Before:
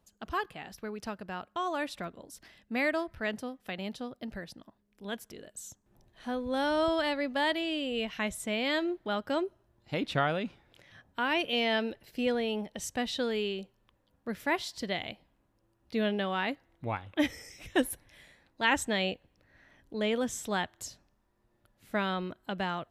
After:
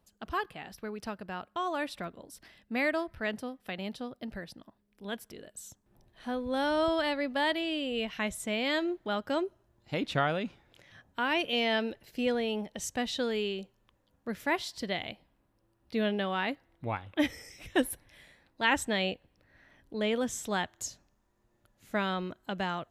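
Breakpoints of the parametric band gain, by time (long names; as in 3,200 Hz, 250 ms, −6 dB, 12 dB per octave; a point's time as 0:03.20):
parametric band 6,700 Hz 0.28 octaves
0:07.93 −5 dB
0:08.55 +3 dB
0:14.34 +3 dB
0:14.91 −3.5 dB
0:19.98 −3.5 dB
0:20.79 +7 dB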